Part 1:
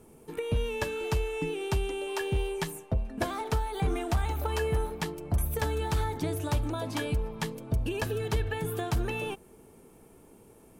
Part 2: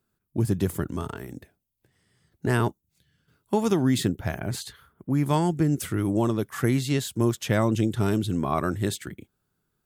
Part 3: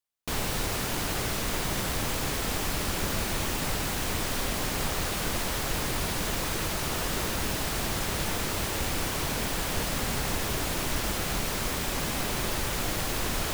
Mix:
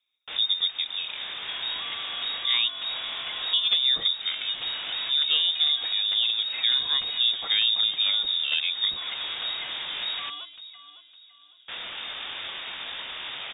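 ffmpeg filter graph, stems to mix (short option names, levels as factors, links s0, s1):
-filter_complex "[0:a]asoftclip=type=tanh:threshold=0.0531,adelay=1100,volume=0.75,asplit=2[s0][s1];[s1]volume=0.251[s2];[1:a]volume=0.841,asplit=2[s3][s4];[2:a]highpass=120,flanger=delay=18:depth=6.6:speed=1.4,volume=1,asplit=3[s5][s6][s7];[s5]atrim=end=10.3,asetpts=PTS-STARTPTS,afade=t=out:st=10.296:d=0.004:c=hsin[s8];[s6]atrim=start=10.3:end=11.68,asetpts=PTS-STARTPTS,volume=0[s9];[s7]atrim=start=11.68,asetpts=PTS-STARTPTS,afade=t=in:d=0.004:c=hsin[s10];[s8][s9][s10]concat=n=3:v=0:a=1[s11];[s4]apad=whole_len=596944[s12];[s11][s12]sidechaincompress=threshold=0.02:ratio=10:attack=24:release=276[s13];[s2]aecho=0:1:558|1116|1674|2232|2790:1|0.33|0.109|0.0359|0.0119[s14];[s0][s3][s13][s14]amix=inputs=4:normalize=0,lowpass=f=3200:t=q:w=0.5098,lowpass=f=3200:t=q:w=0.6013,lowpass=f=3200:t=q:w=0.9,lowpass=f=3200:t=q:w=2.563,afreqshift=-3800"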